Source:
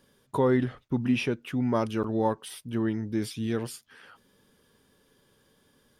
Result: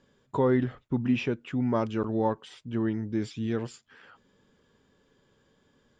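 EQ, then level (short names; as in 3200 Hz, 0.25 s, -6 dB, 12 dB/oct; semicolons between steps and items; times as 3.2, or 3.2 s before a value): synth low-pass 7300 Hz, resonance Q 15; air absorption 250 m; 0.0 dB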